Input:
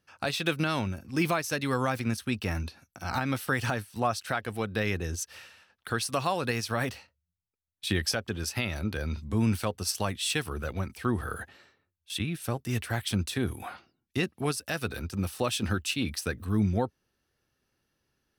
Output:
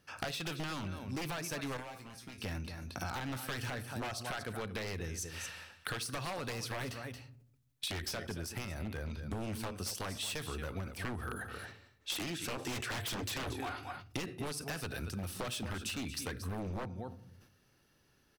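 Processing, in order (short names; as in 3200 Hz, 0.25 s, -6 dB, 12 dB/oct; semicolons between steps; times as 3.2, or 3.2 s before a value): 12.91–13.52 bell 98 Hz +12 dB 0.38 oct; echo 0.228 s -14.5 dB; reverb RT60 0.60 s, pre-delay 7 ms, DRR 17 dB; 12.01–13.93 spectral gain 250–8200 Hz +9 dB; wavefolder -24.5 dBFS; compressor 12:1, threshold -43 dBFS, peak gain reduction 15.5 dB; 1.77–2.38 resonator 61 Hz, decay 0.2 s, harmonics odd, mix 90%; 8.26–9.06 bell 4100 Hz -5 dB 1.9 oct; sustainer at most 98 dB/s; gain +6.5 dB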